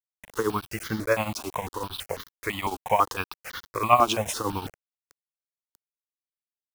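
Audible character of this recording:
tremolo triangle 11 Hz, depth 85%
a quantiser's noise floor 8 bits, dither none
notches that jump at a steady rate 6 Hz 500–2,500 Hz

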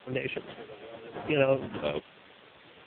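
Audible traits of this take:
tremolo triangle 8.7 Hz, depth 60%
a quantiser's noise floor 8 bits, dither triangular
AMR narrowband

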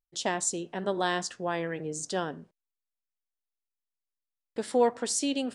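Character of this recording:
background noise floor −89 dBFS
spectral slope −3.0 dB per octave

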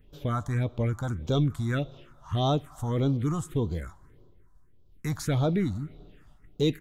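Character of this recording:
phaser sweep stages 4, 1.7 Hz, lowest notch 390–1,900 Hz

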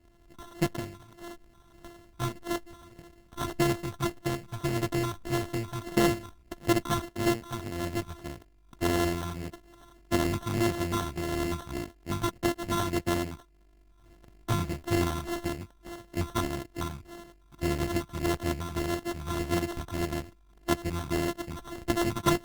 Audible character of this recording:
a buzz of ramps at a fixed pitch in blocks of 128 samples
phaser sweep stages 6, 1.7 Hz, lowest notch 480–3,300 Hz
aliases and images of a low sample rate 2,400 Hz, jitter 0%
Opus

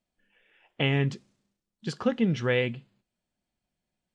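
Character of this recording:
background noise floor −86 dBFS
spectral slope −5.5 dB per octave

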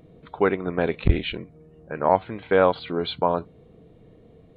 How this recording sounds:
background noise floor −53 dBFS
spectral slope −4.5 dB per octave

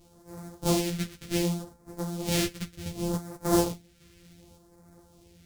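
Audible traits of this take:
a buzz of ramps at a fixed pitch in blocks of 256 samples
phaser sweep stages 2, 0.67 Hz, lowest notch 790–2,800 Hz
sample-and-hold tremolo
a shimmering, thickened sound

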